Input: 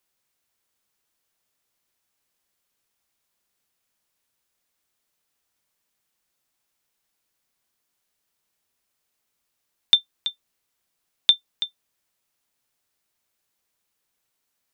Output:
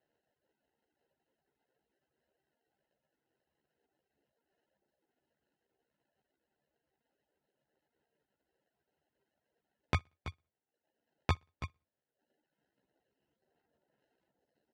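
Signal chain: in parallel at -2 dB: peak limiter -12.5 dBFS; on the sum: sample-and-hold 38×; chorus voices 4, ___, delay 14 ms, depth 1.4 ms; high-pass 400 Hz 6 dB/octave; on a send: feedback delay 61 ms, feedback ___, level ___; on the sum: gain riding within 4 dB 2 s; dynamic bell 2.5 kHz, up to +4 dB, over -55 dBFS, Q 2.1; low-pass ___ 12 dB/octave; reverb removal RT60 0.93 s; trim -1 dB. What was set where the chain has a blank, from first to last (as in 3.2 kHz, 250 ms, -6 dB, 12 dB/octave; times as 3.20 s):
0.8 Hz, 37%, -21 dB, 4.1 kHz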